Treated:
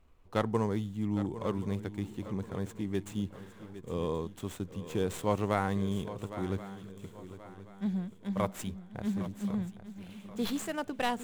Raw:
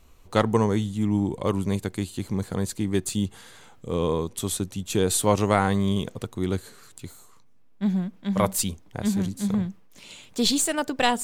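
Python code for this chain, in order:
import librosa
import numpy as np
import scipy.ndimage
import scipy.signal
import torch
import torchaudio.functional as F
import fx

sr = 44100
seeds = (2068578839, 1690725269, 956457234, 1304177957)

y = scipy.signal.medfilt(x, 9)
y = fx.echo_swing(y, sr, ms=1079, ratio=3, feedback_pct=35, wet_db=-13.5)
y = F.gain(torch.from_numpy(y), -8.5).numpy()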